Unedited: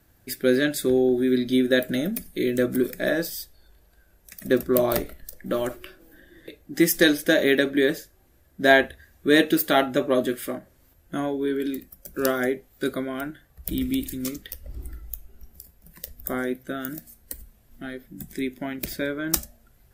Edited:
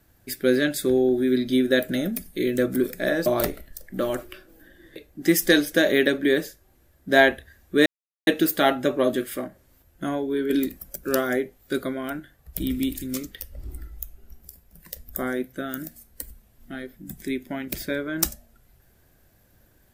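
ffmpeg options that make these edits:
-filter_complex "[0:a]asplit=5[a][b][c][d][e];[a]atrim=end=3.262[f];[b]atrim=start=4.778:end=9.38,asetpts=PTS-STARTPTS,afade=t=out:st=4.598:d=0.004:c=hsin,apad=pad_dur=0.41[g];[c]atrim=start=9.38:end=11.612,asetpts=PTS-STARTPTS,afade=t=in:d=0.004:c=hsin[h];[d]atrim=start=11.608:end=12.072,asetpts=PTS-STARTPTS,volume=6dB[i];[e]atrim=start=12.068[j];[g][h]concat=n=2:v=0:a=1[k];[f][k]acrossfade=d=0.004:c1=hsin:c2=hsin[l];[l][i]acrossfade=d=0.004:c1=hsin:c2=hsin[m];[m][j]acrossfade=d=0.004:c1=hsin:c2=hsin"

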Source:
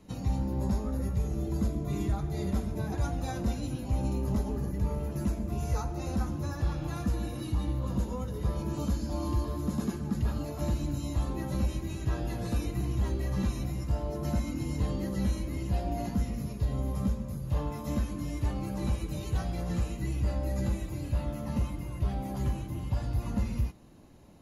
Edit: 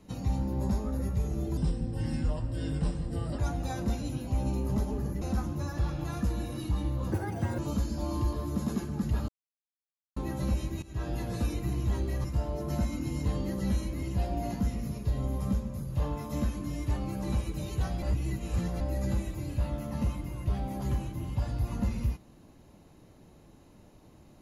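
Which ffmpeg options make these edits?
-filter_complex "[0:a]asplit=12[a][b][c][d][e][f][g][h][i][j][k][l];[a]atrim=end=1.574[m];[b]atrim=start=1.57:end=2.97,asetpts=PTS-STARTPTS,asetrate=33957,aresample=44100[n];[c]atrim=start=2.966:end=4.802[o];[d]atrim=start=6.048:end=7.954[p];[e]atrim=start=7.95:end=8.7,asetpts=PTS-STARTPTS,asetrate=71001,aresample=44100,atrim=end_sample=20543,asetpts=PTS-STARTPTS[q];[f]atrim=start=8.696:end=10.4,asetpts=PTS-STARTPTS,afade=t=out:st=1.7:d=0.004:c=hsin[r];[g]atrim=start=10.4:end=11.28,asetpts=PTS-STARTPTS,volume=0[s];[h]atrim=start=11.28:end=11.94,asetpts=PTS-STARTPTS,afade=t=in:d=0.004:c=hsin,afade=t=out:st=0.656:d=0.004:c=hsin:silence=0.125893[t];[i]atrim=start=11.94:end=13.362,asetpts=PTS-STARTPTS,afade=t=in:d=0.29:silence=0.125893[u];[j]atrim=start=13.788:end=19.572[v];[k]atrim=start=19.568:end=20.352,asetpts=PTS-STARTPTS,areverse[w];[l]atrim=start=20.348[x];[m][n]acrossfade=d=0.004:c1=hsin:c2=hsin[y];[y][o]acrossfade=d=0.004:c1=hsin:c2=hsin[z];[z][p]acrossfade=d=0.004:c1=hsin:c2=hsin[aa];[aa][q]acrossfade=d=0.004:c1=hsin:c2=hsin[ab];[r][s][t][u]concat=n=4:v=0:a=1[ac];[ab][ac]acrossfade=d=0.004:c1=hsin:c2=hsin[ad];[ad][v]acrossfade=d=0.004:c1=hsin:c2=hsin[ae];[ae][w]acrossfade=d=0.004:c1=hsin:c2=hsin[af];[af][x]acrossfade=d=0.004:c1=hsin:c2=hsin"

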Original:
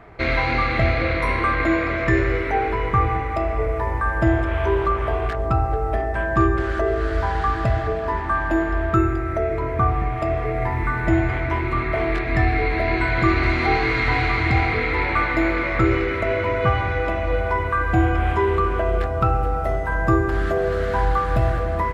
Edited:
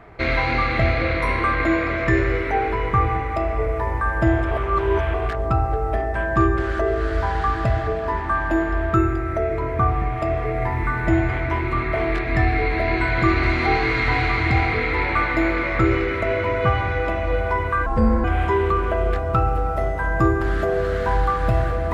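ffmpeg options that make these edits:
-filter_complex "[0:a]asplit=5[a][b][c][d][e];[a]atrim=end=4.512[f];[b]atrim=start=4.508:end=5.142,asetpts=PTS-STARTPTS,areverse[g];[c]atrim=start=5.138:end=17.864[h];[d]atrim=start=17.86:end=18.12,asetpts=PTS-STARTPTS,asetrate=29988,aresample=44100[i];[e]atrim=start=18.116[j];[f][g]acrossfade=d=0.004:c1=hsin:c2=hsin[k];[k][h]acrossfade=d=0.004:c1=hsin:c2=hsin[l];[l][i]acrossfade=d=0.004:c1=hsin:c2=hsin[m];[m][j]acrossfade=d=0.004:c1=hsin:c2=hsin"

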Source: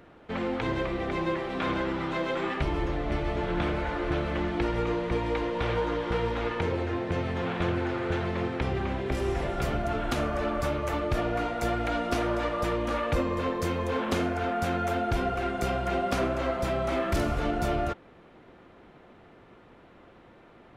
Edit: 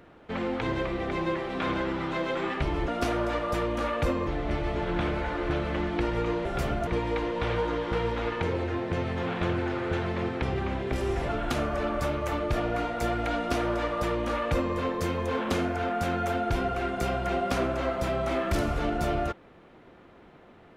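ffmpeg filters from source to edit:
-filter_complex "[0:a]asplit=6[a][b][c][d][e][f];[a]atrim=end=2.882[g];[b]atrim=start=11.978:end=13.372[h];[c]atrim=start=2.878:end=5.062[i];[d]atrim=start=9.478:end=9.902[j];[e]atrim=start=5.058:end=9.482[k];[f]atrim=start=9.898[l];[g][h]acrossfade=d=0.004:c1=hsin:c2=hsin[m];[m][i]acrossfade=d=0.004:c1=hsin:c2=hsin[n];[n][j]acrossfade=d=0.004:c1=hsin:c2=hsin[o];[o][k]acrossfade=d=0.004:c1=hsin:c2=hsin[p];[p][l]acrossfade=d=0.004:c1=hsin:c2=hsin"

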